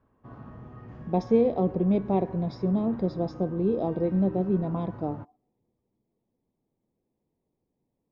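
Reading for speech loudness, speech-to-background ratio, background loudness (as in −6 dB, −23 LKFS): −27.0 LKFS, 16.5 dB, −43.5 LKFS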